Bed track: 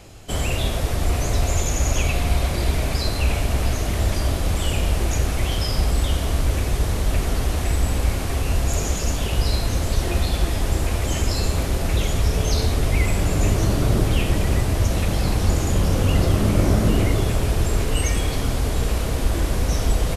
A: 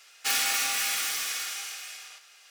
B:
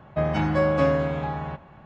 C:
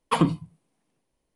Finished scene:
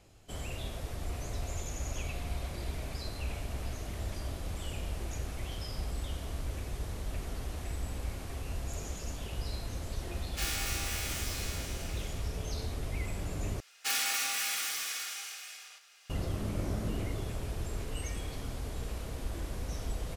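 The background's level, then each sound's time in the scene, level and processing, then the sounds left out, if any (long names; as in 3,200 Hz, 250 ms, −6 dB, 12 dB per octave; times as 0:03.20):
bed track −16.5 dB
0:10.12: mix in A −11 dB + peak hold with a decay on every bin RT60 0.47 s
0:13.60: overwrite with A −5 dB
not used: B, C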